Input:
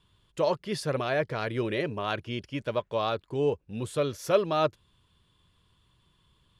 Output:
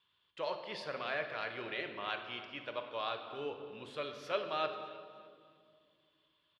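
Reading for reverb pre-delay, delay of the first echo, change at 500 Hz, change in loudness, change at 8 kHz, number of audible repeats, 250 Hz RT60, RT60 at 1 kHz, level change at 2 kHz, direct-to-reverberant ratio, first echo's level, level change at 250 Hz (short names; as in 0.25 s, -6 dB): 20 ms, 0.302 s, -12.0 dB, -10.0 dB, under -15 dB, 2, 3.3 s, 1.9 s, -4.0 dB, 5.5 dB, -18.5 dB, -16.0 dB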